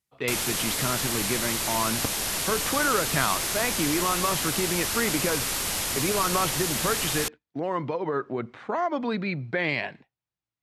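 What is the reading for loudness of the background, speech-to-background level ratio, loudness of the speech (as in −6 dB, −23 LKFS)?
−26.5 LKFS, −2.5 dB, −29.0 LKFS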